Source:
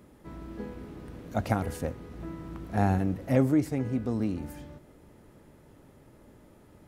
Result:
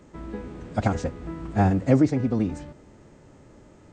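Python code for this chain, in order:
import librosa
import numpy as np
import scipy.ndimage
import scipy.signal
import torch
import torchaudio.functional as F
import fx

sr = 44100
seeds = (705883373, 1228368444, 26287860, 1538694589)

y = fx.freq_compress(x, sr, knee_hz=2800.0, ratio=1.5)
y = fx.stretch_vocoder(y, sr, factor=0.57)
y = y * librosa.db_to_amplitude(6.0)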